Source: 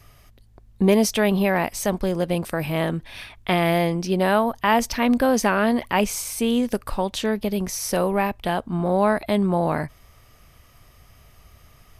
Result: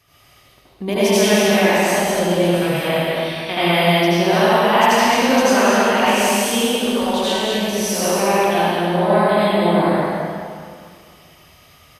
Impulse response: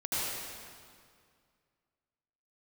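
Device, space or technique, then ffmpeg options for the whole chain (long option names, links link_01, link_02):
stadium PA: -filter_complex "[0:a]highpass=frequency=220:poles=1,equalizer=frequency=3400:width_type=o:width=0.99:gain=6,aecho=1:1:145.8|209.9:0.251|0.562[link_01];[1:a]atrim=start_sample=2205[link_02];[link_01][link_02]afir=irnorm=-1:irlink=0,volume=-2.5dB"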